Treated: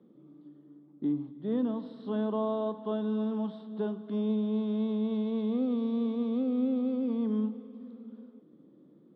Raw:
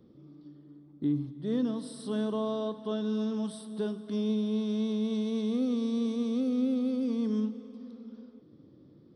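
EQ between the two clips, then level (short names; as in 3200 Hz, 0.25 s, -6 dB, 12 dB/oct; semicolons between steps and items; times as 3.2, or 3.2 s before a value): Chebyshev band-pass 180–3600 Hz, order 3; high shelf 2900 Hz -11 dB; dynamic EQ 840 Hz, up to +6 dB, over -53 dBFS, Q 1.7; 0.0 dB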